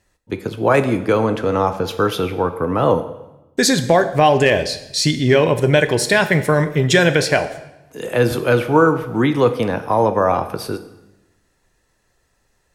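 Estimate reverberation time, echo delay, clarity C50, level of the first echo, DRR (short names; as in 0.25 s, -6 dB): 0.95 s, none, 12.5 dB, none, 9.5 dB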